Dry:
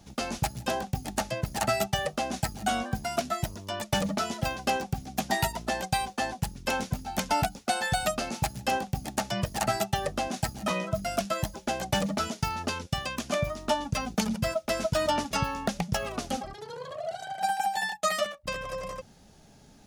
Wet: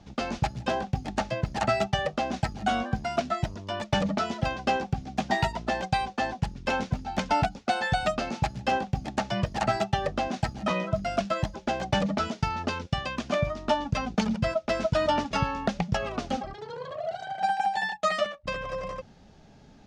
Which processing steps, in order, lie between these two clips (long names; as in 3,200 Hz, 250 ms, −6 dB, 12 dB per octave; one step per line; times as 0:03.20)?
high-frequency loss of the air 140 metres
level +2.5 dB